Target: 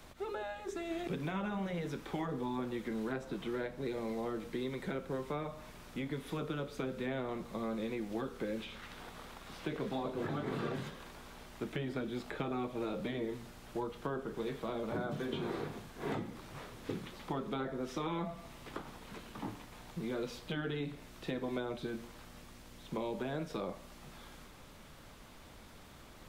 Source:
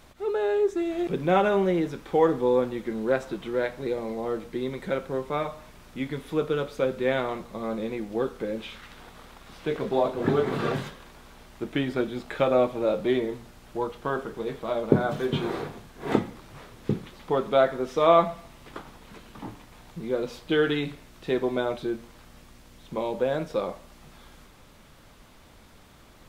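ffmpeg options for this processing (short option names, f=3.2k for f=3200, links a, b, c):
-filter_complex "[0:a]afftfilt=real='re*lt(hypot(re,im),0.447)':imag='im*lt(hypot(re,im),0.447)':win_size=1024:overlap=0.75,acrossover=split=110|430|990[a][b][c][d];[a]acompressor=threshold=-53dB:ratio=4[e];[b]acompressor=threshold=-36dB:ratio=4[f];[c]acompressor=threshold=-46dB:ratio=4[g];[d]acompressor=threshold=-45dB:ratio=4[h];[e][f][g][h]amix=inputs=4:normalize=0,volume=-1.5dB"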